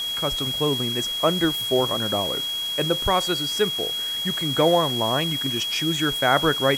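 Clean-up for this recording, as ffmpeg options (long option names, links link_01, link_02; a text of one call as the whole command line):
ffmpeg -i in.wav -af "bandreject=frequency=3300:width=30,afwtdn=0.013" out.wav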